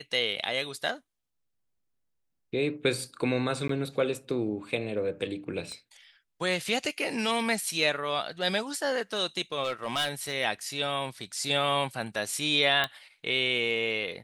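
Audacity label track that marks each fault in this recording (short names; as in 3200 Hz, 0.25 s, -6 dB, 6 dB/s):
3.680000	3.690000	gap 13 ms
5.720000	5.720000	pop -28 dBFS
9.640000	10.340000	clipped -24 dBFS
12.840000	12.840000	pop -13 dBFS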